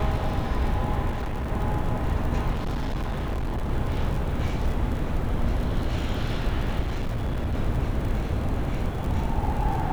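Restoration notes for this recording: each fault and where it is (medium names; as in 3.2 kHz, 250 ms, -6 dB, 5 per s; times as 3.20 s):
crackle 51 per s -31 dBFS
1.09–1.52 s: clipped -25.5 dBFS
2.51–3.71 s: clipped -24 dBFS
6.79–7.55 s: clipped -23 dBFS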